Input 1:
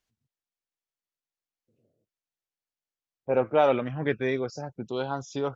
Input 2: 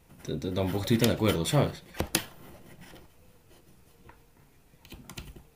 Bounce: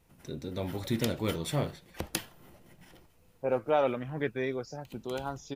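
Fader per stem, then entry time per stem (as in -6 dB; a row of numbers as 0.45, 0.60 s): -5.0, -6.0 dB; 0.15, 0.00 s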